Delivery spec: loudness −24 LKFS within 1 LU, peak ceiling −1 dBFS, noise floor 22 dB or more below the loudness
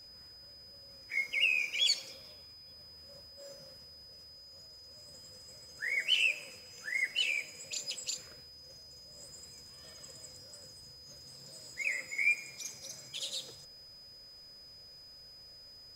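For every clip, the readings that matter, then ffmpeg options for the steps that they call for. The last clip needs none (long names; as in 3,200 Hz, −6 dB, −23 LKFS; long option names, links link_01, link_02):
interfering tone 5,000 Hz; level of the tone −51 dBFS; integrated loudness −32.0 LKFS; sample peak −18.0 dBFS; target loudness −24.0 LKFS
→ -af "bandreject=frequency=5000:width=30"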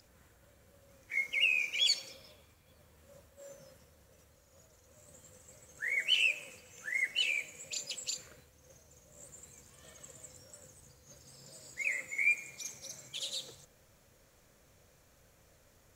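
interfering tone none found; integrated loudness −32.0 LKFS; sample peak −18.5 dBFS; target loudness −24.0 LKFS
→ -af "volume=8dB"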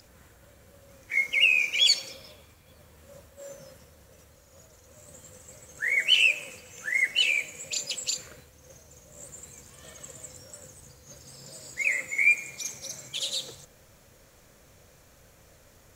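integrated loudness −24.0 LKFS; sample peak −10.5 dBFS; background noise floor −57 dBFS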